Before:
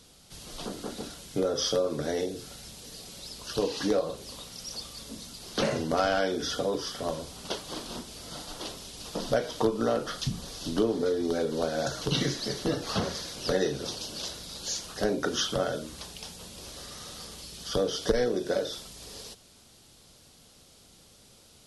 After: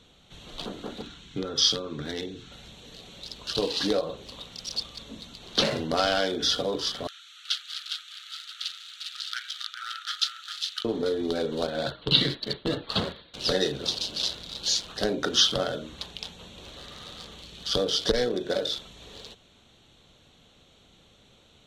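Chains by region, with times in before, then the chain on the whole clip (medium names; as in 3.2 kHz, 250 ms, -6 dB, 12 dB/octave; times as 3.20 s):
1.02–2.52 s: low-pass 8.1 kHz + peaking EQ 590 Hz -13 dB 0.8 oct
7.07–10.85 s: brick-wall FIR high-pass 1.2 kHz + delay 407 ms -6 dB
11.67–13.34 s: steep low-pass 4.7 kHz 96 dB/octave + expander -32 dBFS + band-stop 740 Hz, Q 18
whole clip: local Wiener filter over 9 samples; peaking EQ 3.9 kHz +13.5 dB 1.1 oct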